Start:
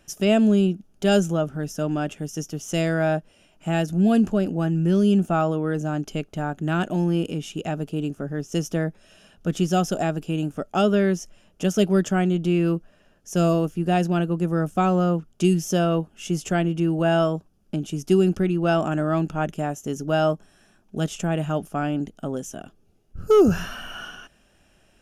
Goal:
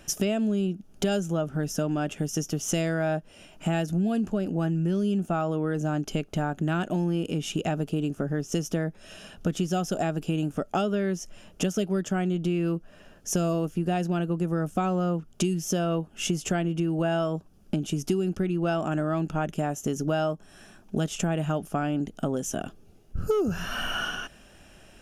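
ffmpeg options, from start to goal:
ffmpeg -i in.wav -af "acompressor=threshold=-32dB:ratio=6,volume=7.5dB" out.wav

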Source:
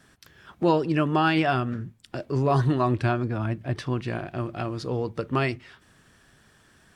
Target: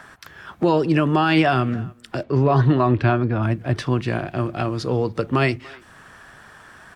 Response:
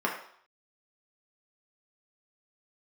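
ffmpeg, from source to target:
-filter_complex "[0:a]asettb=1/sr,asplit=3[link_01][link_02][link_03];[link_01]atrim=end=2.234[link_04];[link_02]atrim=start=2.23:end=3.43,asetpts=PTS-STARTPTS,afade=type=in:duration=0.004:curve=qsin,afade=type=out:start_time=1.196:duration=0.004:curve=qsin,lowpass=3700[link_05];[link_03]atrim=start=3.426[link_06];[link_04][link_05]acrossfade=duration=0.004:curve1=hsin:curve2=qsin[link_07];[link_07][link_06]acrossfade=duration=0.004:curve1=qsin:curve2=hsin,acrossover=split=130|700|1700[link_08][link_09][link_10][link_11];[link_10]acompressor=mode=upward:threshold=-41dB:ratio=2.5[link_12];[link_08][link_09][link_12][link_11]amix=inputs=4:normalize=0,asplit=2[link_13][link_14];[link_14]adelay=290,highpass=300,lowpass=3400,asoftclip=type=hard:threshold=-16.5dB,volume=-24dB[link_15];[link_13][link_15]amix=inputs=2:normalize=0,alimiter=level_in=13dB:limit=-1dB:release=50:level=0:latency=1,volume=-6.5dB"

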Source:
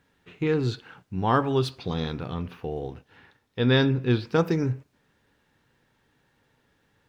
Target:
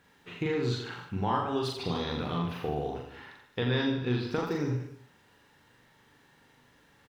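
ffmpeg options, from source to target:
ffmpeg -i in.wav -filter_complex "[0:a]lowshelf=frequency=180:gain=-8,acompressor=threshold=-33dB:ratio=6,asplit=2[link_01][link_02];[link_02]adelay=41,volume=-4.5dB[link_03];[link_01][link_03]amix=inputs=2:normalize=0,asplit=2[link_04][link_05];[link_05]aecho=0:1:40|88|145.6|214.7|297.7:0.631|0.398|0.251|0.158|0.1[link_06];[link_04][link_06]amix=inputs=2:normalize=0,volume=3.5dB" out.wav

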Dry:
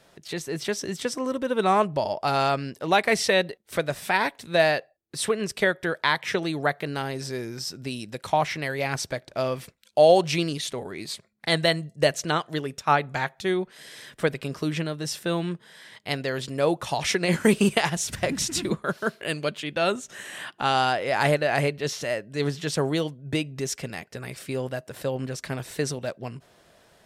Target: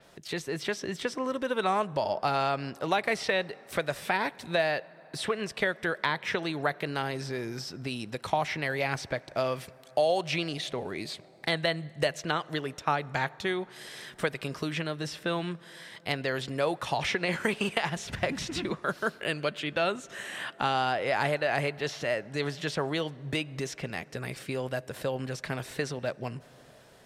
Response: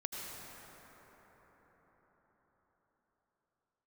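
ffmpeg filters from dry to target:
-filter_complex "[0:a]acrossover=split=620|3900[link_01][link_02][link_03];[link_01]acompressor=threshold=-33dB:ratio=4[link_04];[link_02]acompressor=threshold=-27dB:ratio=4[link_05];[link_03]acompressor=threshold=-45dB:ratio=4[link_06];[link_04][link_05][link_06]amix=inputs=3:normalize=0,asoftclip=type=hard:threshold=-13.5dB,asplit=2[link_07][link_08];[1:a]atrim=start_sample=2205[link_09];[link_08][link_09]afir=irnorm=-1:irlink=0,volume=-22dB[link_10];[link_07][link_10]amix=inputs=2:normalize=0,adynamicequalizer=threshold=0.00355:dfrequency=5600:dqfactor=0.7:tfrequency=5600:tqfactor=0.7:attack=5:release=100:ratio=0.375:range=2:mode=cutabove:tftype=highshelf"

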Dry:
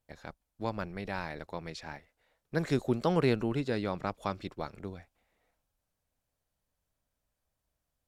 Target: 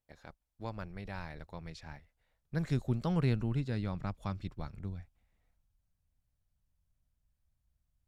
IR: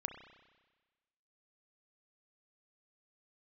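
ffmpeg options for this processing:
-af "asubboost=boost=7:cutoff=160,volume=-7dB"

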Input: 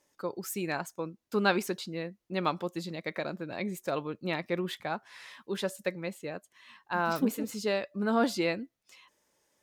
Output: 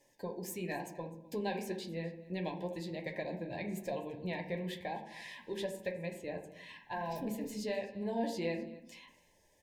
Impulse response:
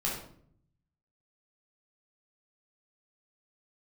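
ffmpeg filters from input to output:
-filter_complex "[0:a]asubboost=boost=3.5:cutoff=88,acompressor=threshold=-48dB:ratio=2,flanger=delay=7:depth=6.2:regen=-36:speed=0.99:shape=triangular,asuperstop=centerf=1300:order=20:qfactor=2.4,aecho=1:1:255:0.0944,asplit=2[link_01][link_02];[1:a]atrim=start_sample=2205,lowpass=2800[link_03];[link_02][link_03]afir=irnorm=-1:irlink=0,volume=-7.5dB[link_04];[link_01][link_04]amix=inputs=2:normalize=0,volume=5dB"

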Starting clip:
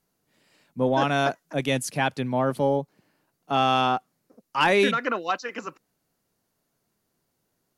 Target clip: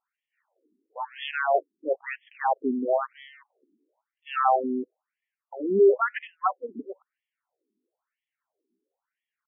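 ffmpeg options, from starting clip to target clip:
ffmpeg -i in.wav -filter_complex "[0:a]atempo=0.82,aeval=exprs='0.376*(cos(1*acos(clip(val(0)/0.376,-1,1)))-cos(1*PI/2))+0.00668*(cos(7*acos(clip(val(0)/0.376,-1,1)))-cos(7*PI/2))+0.00376*(cos(8*acos(clip(val(0)/0.376,-1,1)))-cos(8*PI/2))':channel_layout=same,asplit=2[link_01][link_02];[link_02]adynamicsmooth=sensitivity=1:basefreq=660,volume=-2dB[link_03];[link_01][link_03]amix=inputs=2:normalize=0,afftfilt=real='re*between(b*sr/1024,290*pow(2500/290,0.5+0.5*sin(2*PI*1*pts/sr))/1.41,290*pow(2500/290,0.5+0.5*sin(2*PI*1*pts/sr))*1.41)':imag='im*between(b*sr/1024,290*pow(2500/290,0.5+0.5*sin(2*PI*1*pts/sr))/1.41,290*pow(2500/290,0.5+0.5*sin(2*PI*1*pts/sr))*1.41)':win_size=1024:overlap=0.75" out.wav

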